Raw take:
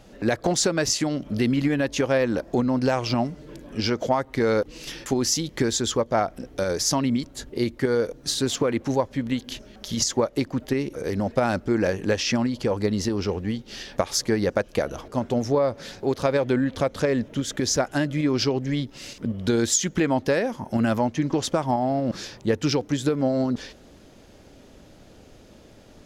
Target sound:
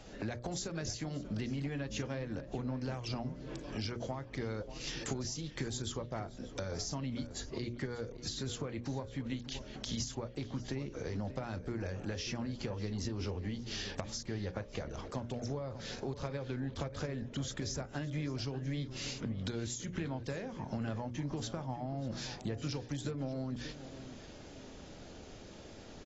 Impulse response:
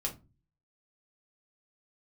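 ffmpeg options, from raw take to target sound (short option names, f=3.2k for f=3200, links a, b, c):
-filter_complex "[0:a]equalizer=f=7.5k:w=0.34:g=2.5,bandreject=f=60:t=h:w=6,bandreject=f=120:t=h:w=6,bandreject=f=180:t=h:w=6,bandreject=f=240:t=h:w=6,bandreject=f=300:t=h:w=6,bandreject=f=360:t=h:w=6,bandreject=f=420:t=h:w=6,bandreject=f=480:t=h:w=6,bandreject=f=540:t=h:w=6,bandreject=f=600:t=h:w=6,acrossover=split=140[a][b];[a]asoftclip=type=tanh:threshold=-36dB[c];[b]acompressor=threshold=-36dB:ratio=20[d];[c][d]amix=inputs=2:normalize=0,asplit=2[e][f];[f]adelay=588,lowpass=f=2.6k:p=1,volume=-13dB,asplit=2[g][h];[h]adelay=588,lowpass=f=2.6k:p=1,volume=0.29,asplit=2[i][j];[j]adelay=588,lowpass=f=2.6k:p=1,volume=0.29[k];[e][g][i][k]amix=inputs=4:normalize=0,volume=-2dB" -ar 22050 -c:a aac -b:a 24k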